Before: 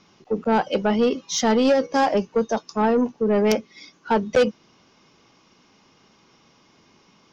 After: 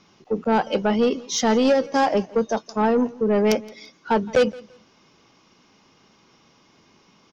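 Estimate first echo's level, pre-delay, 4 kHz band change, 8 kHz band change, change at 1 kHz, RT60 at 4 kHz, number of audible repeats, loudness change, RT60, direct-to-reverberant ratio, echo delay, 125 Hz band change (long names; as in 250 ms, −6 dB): −22.0 dB, no reverb audible, 0.0 dB, can't be measured, 0.0 dB, no reverb audible, 2, 0.0 dB, no reverb audible, no reverb audible, 169 ms, 0.0 dB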